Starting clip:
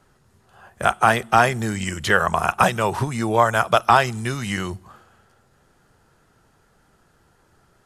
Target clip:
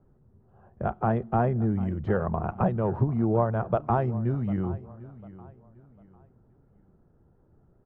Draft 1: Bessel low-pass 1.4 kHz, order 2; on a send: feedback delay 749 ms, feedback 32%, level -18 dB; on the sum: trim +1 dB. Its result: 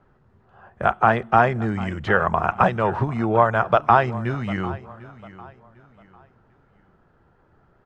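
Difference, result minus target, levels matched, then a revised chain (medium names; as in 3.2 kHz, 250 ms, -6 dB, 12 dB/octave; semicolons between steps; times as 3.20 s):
1 kHz band +5.0 dB
Bessel low-pass 360 Hz, order 2; on a send: feedback delay 749 ms, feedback 32%, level -18 dB; on the sum: trim +1 dB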